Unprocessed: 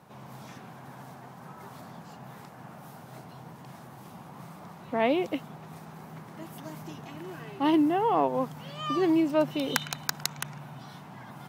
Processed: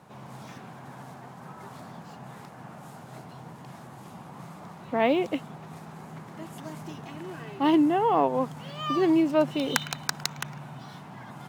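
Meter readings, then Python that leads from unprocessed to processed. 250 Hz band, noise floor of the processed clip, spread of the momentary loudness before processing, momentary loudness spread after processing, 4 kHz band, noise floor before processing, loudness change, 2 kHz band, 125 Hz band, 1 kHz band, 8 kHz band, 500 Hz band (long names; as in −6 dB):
+2.0 dB, −46 dBFS, 22 LU, 22 LU, +1.5 dB, −48 dBFS, +2.0 dB, +2.0 dB, +2.0 dB, +2.0 dB, +0.5 dB, +2.0 dB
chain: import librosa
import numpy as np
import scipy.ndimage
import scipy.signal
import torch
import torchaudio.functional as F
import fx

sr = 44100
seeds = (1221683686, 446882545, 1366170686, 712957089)

y = np.interp(np.arange(len(x)), np.arange(len(x))[::2], x[::2])
y = y * 10.0 ** (2.0 / 20.0)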